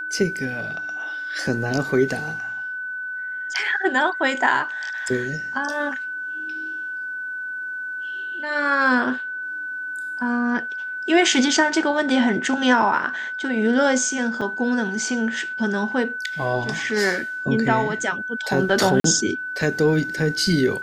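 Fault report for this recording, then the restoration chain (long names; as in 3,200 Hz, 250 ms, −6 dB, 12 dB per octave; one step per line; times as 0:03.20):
whistle 1,500 Hz −27 dBFS
0:14.41: drop-out 4.9 ms
0:19.00–0:19.04: drop-out 43 ms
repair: notch filter 1,500 Hz, Q 30
repair the gap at 0:14.41, 4.9 ms
repair the gap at 0:19.00, 43 ms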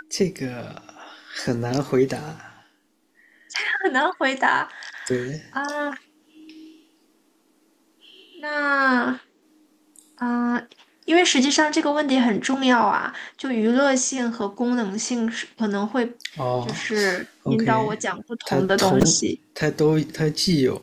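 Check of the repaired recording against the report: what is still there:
none of them is left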